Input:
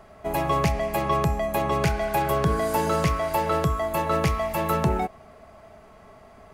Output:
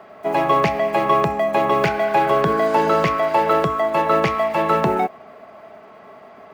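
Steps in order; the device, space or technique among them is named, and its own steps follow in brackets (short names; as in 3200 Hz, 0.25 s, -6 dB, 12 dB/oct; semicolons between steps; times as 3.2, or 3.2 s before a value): early digital voice recorder (BPF 240–3400 Hz; block floating point 7-bit); gain +7.5 dB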